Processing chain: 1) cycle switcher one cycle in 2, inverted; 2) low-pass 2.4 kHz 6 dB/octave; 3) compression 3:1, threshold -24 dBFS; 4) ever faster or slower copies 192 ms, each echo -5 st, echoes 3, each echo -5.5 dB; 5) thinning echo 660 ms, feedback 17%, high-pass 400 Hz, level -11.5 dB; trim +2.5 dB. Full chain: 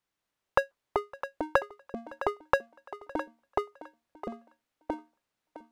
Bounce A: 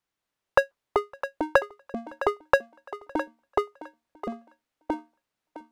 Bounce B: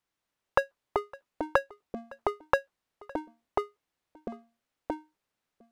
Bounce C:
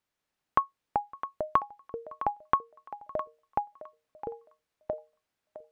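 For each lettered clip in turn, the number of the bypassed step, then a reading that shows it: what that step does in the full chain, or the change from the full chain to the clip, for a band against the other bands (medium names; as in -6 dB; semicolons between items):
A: 3, crest factor change -4.5 dB; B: 5, momentary loudness spread change -2 LU; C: 1, 1 kHz band +11.0 dB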